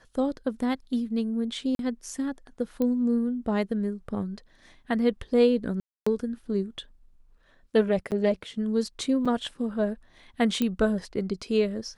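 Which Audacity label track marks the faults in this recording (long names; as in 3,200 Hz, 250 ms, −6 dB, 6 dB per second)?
1.750000	1.790000	drop-out 42 ms
2.820000	2.820000	click −17 dBFS
5.800000	6.070000	drop-out 265 ms
8.110000	8.120000	drop-out 8.3 ms
9.250000	9.260000	drop-out 5.5 ms
10.620000	10.620000	click −13 dBFS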